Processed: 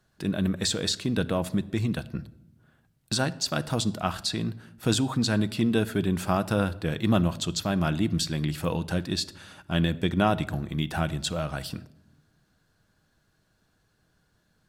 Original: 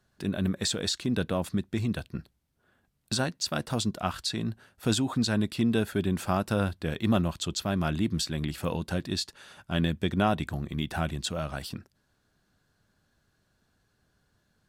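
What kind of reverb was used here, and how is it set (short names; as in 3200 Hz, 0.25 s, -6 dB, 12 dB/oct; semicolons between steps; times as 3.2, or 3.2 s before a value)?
shoebox room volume 3000 m³, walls furnished, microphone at 0.6 m; gain +2 dB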